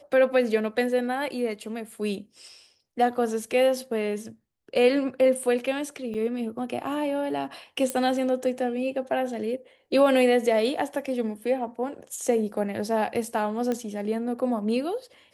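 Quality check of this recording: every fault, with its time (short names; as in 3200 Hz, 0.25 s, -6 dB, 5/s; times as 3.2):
6.14–6.15 gap 5.9 ms
7.9 pop -12 dBFS
13.72 pop -16 dBFS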